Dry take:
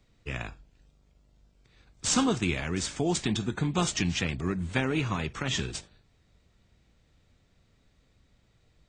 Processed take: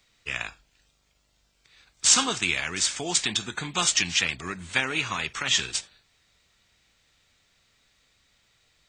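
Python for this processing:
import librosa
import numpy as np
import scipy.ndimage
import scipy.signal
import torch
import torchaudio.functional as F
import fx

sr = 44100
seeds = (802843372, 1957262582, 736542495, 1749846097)

y = fx.tilt_shelf(x, sr, db=-10.0, hz=750.0)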